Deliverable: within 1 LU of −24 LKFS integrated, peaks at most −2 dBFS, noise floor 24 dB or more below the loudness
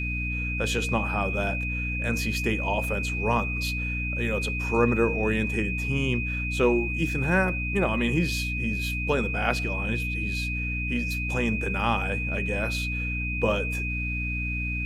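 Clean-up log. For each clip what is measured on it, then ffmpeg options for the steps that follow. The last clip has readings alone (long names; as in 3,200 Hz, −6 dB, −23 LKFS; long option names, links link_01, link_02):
mains hum 60 Hz; hum harmonics up to 300 Hz; level of the hum −28 dBFS; interfering tone 2,500 Hz; level of the tone −30 dBFS; integrated loudness −26.5 LKFS; sample peak −7.5 dBFS; target loudness −24.0 LKFS
→ -af "bandreject=frequency=60:width_type=h:width=6,bandreject=frequency=120:width_type=h:width=6,bandreject=frequency=180:width_type=h:width=6,bandreject=frequency=240:width_type=h:width=6,bandreject=frequency=300:width_type=h:width=6"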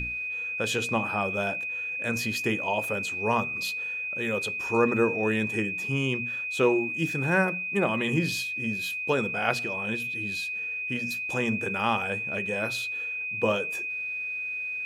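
mains hum none found; interfering tone 2,500 Hz; level of the tone −30 dBFS
→ -af "bandreject=frequency=2500:width=30"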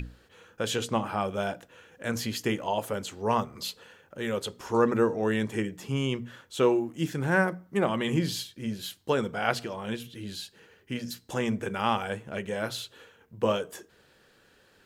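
interfering tone none found; integrated loudness −30.0 LKFS; sample peak −8.5 dBFS; target loudness −24.0 LKFS
→ -af "volume=6dB"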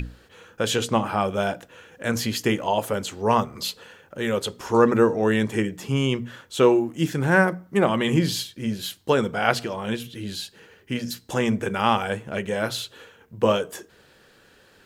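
integrated loudness −24.0 LKFS; sample peak −2.5 dBFS; background noise floor −56 dBFS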